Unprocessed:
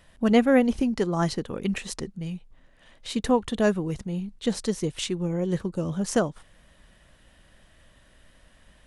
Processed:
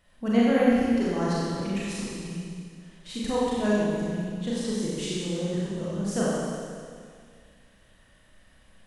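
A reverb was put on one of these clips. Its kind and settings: Schroeder reverb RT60 2.1 s, combs from 30 ms, DRR -7.5 dB; gain -9.5 dB

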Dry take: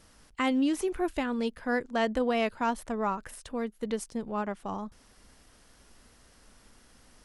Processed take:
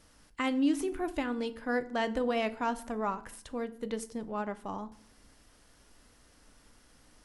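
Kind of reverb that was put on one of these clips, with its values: FDN reverb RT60 0.57 s, low-frequency decay 1.55×, high-frequency decay 0.75×, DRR 11 dB; gain -3 dB

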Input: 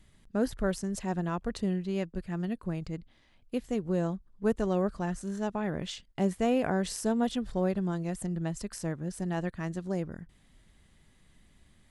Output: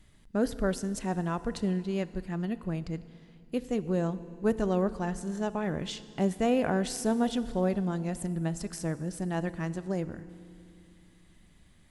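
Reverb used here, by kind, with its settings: FDN reverb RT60 2.4 s, low-frequency decay 1.45×, high-frequency decay 0.95×, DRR 14 dB; gain +1 dB

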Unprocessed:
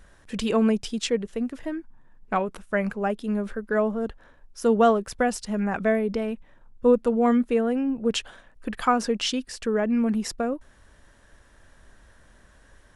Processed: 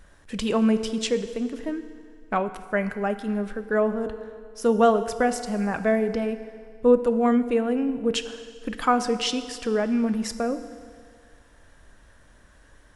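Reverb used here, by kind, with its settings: FDN reverb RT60 2.1 s, low-frequency decay 0.8×, high-frequency decay 0.9×, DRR 10 dB

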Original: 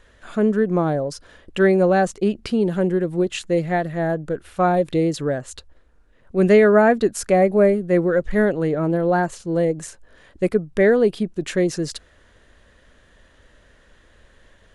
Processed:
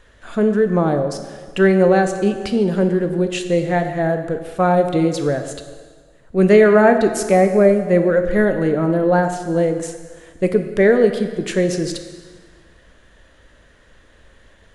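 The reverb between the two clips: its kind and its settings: plate-style reverb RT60 1.6 s, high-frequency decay 0.9×, DRR 6.5 dB; gain +2 dB

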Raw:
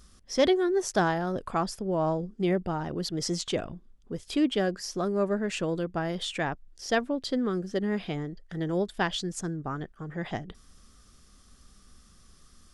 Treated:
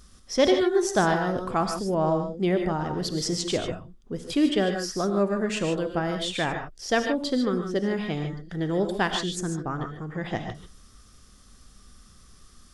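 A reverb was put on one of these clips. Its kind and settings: non-linear reverb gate 0.17 s rising, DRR 5 dB; gain +2.5 dB

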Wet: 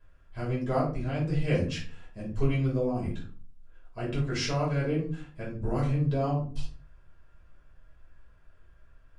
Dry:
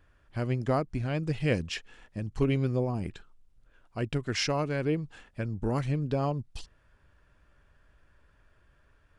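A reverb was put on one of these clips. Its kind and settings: shoebox room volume 280 m³, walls furnished, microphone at 5.3 m; gain -10 dB

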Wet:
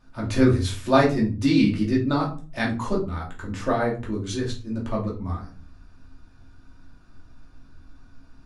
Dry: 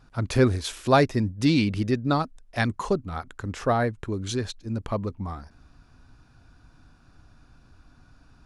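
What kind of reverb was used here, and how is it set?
shoebox room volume 240 m³, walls furnished, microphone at 2.6 m; gain -5 dB

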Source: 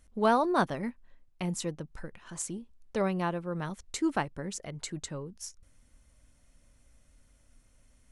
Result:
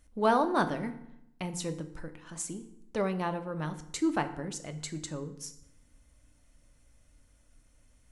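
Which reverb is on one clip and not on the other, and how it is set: FDN reverb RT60 0.77 s, low-frequency decay 1.25×, high-frequency decay 0.75×, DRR 8 dB; gain -1 dB

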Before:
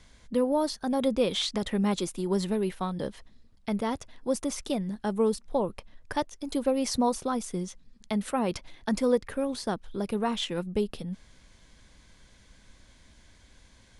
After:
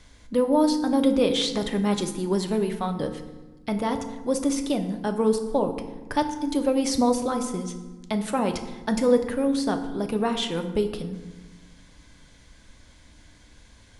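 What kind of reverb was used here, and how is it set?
FDN reverb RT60 1.2 s, low-frequency decay 1.5×, high-frequency decay 0.6×, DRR 6 dB; gain +3 dB

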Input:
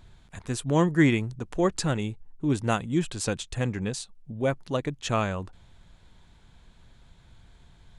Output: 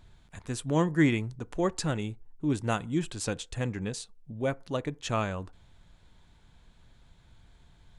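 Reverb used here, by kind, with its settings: FDN reverb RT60 0.37 s, low-frequency decay 0.7×, high-frequency decay 0.45×, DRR 18.5 dB; gain -3.5 dB

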